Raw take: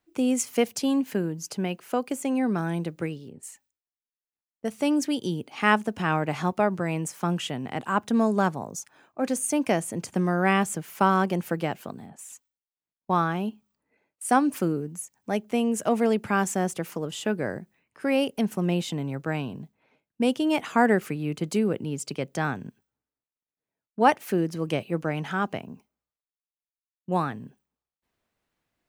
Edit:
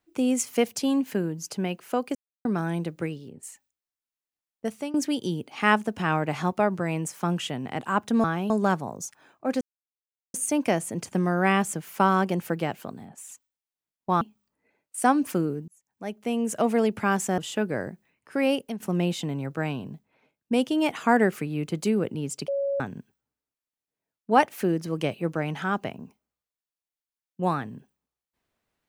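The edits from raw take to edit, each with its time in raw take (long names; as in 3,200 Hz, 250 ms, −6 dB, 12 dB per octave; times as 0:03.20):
0:02.15–0:02.45: silence
0:04.69–0:04.94: fade out, to −20.5 dB
0:09.35: splice in silence 0.73 s
0:13.22–0:13.48: move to 0:08.24
0:14.95–0:15.83: fade in
0:16.65–0:17.07: remove
0:18.23–0:18.49: fade out, to −14.5 dB
0:22.17–0:22.49: beep over 557 Hz −23.5 dBFS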